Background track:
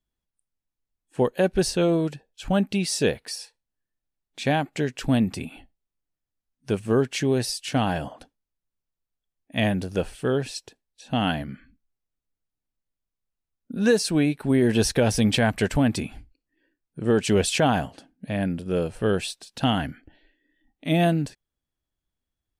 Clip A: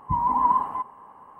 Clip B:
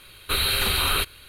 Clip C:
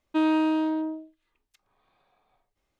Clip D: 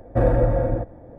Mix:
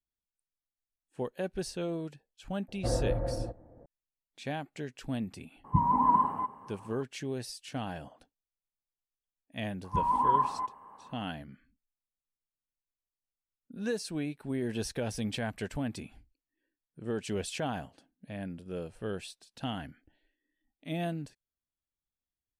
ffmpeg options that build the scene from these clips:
ffmpeg -i bed.wav -i cue0.wav -i cue1.wav -i cue2.wav -i cue3.wav -filter_complex "[1:a]asplit=2[link_01][link_02];[0:a]volume=-13.5dB[link_03];[4:a]lowpass=1700[link_04];[link_01]equalizer=frequency=180:width_type=o:width=2.2:gain=10.5[link_05];[link_04]atrim=end=1.18,asetpts=PTS-STARTPTS,volume=-12dB,afade=type=in:duration=0.004:curve=hsin,afade=type=out:start_time=1.176:duration=0.004:curve=hsin,adelay=2680[link_06];[link_05]atrim=end=1.39,asetpts=PTS-STARTPTS,volume=-5dB,afade=type=in:duration=0.004:curve=hsin,afade=type=out:start_time=1.386:duration=0.004:curve=hsin,adelay=5640[link_07];[link_02]atrim=end=1.39,asetpts=PTS-STARTPTS,volume=-5dB,afade=type=in:duration=0.004:curve=hsin,afade=type=out:start_time=1.386:duration=0.004:curve=hsin,adelay=9840[link_08];[link_03][link_06][link_07][link_08]amix=inputs=4:normalize=0" out.wav

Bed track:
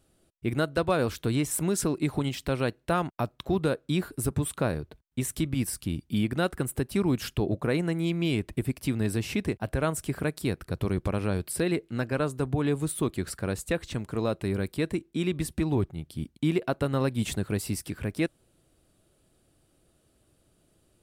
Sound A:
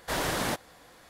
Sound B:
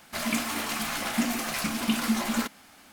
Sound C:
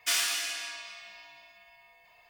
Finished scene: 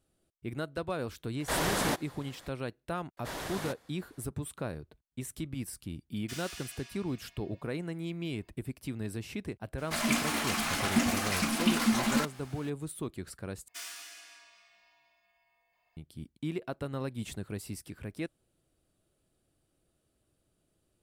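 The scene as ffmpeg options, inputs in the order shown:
ffmpeg -i bed.wav -i cue0.wav -i cue1.wav -i cue2.wav -filter_complex "[1:a]asplit=2[link_01][link_02];[3:a]asplit=2[link_03][link_04];[0:a]volume=-9.5dB[link_05];[link_03]alimiter=limit=-18dB:level=0:latency=1:release=71[link_06];[2:a]equalizer=frequency=14000:width=2.6:gain=-9[link_07];[link_04]equalizer=frequency=3300:width_type=o:width=1.4:gain=-4[link_08];[link_05]asplit=2[link_09][link_10];[link_09]atrim=end=13.684[link_11];[link_08]atrim=end=2.29,asetpts=PTS-STARTPTS,volume=-13.5dB[link_12];[link_10]atrim=start=15.966[link_13];[link_01]atrim=end=1.09,asetpts=PTS-STARTPTS,volume=-0.5dB,afade=type=in:duration=0.004:curve=hsin,afade=type=out:start_time=1.086:duration=0.004:curve=hsin,adelay=1400[link_14];[link_02]atrim=end=1.09,asetpts=PTS-STARTPTS,volume=-9.5dB,afade=type=in:duration=0.004:curve=hsin,afade=type=out:start_time=1.086:duration=0.004:curve=hsin,adelay=139797S[link_15];[link_06]atrim=end=2.29,asetpts=PTS-STARTPTS,volume=-14.5dB,afade=type=in:duration=0.004:curve=hsin,afade=type=out:start_time=2.286:duration=0.004:curve=hsin,adelay=6220[link_16];[link_07]atrim=end=2.92,asetpts=PTS-STARTPTS,volume=-0.5dB,afade=type=in:duration=0.004:curve=hsin,afade=type=out:start_time=2.916:duration=0.004:curve=hsin,adelay=431298S[link_17];[link_11][link_12]acrossfade=duration=0.004:curve1=hsin:curve2=hsin[link_18];[link_18][link_13]acrossfade=duration=0.004:curve1=hsin:curve2=hsin[link_19];[link_19][link_14][link_15][link_16][link_17]amix=inputs=5:normalize=0" out.wav

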